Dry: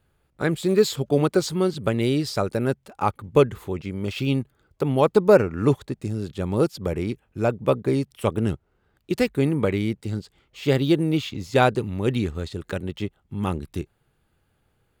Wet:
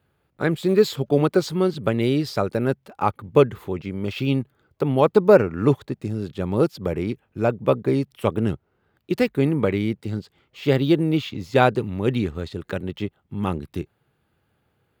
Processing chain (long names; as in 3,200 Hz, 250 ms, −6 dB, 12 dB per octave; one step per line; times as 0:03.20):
high-pass filter 86 Hz
parametric band 8,200 Hz −8 dB 1.3 octaves
level +1.5 dB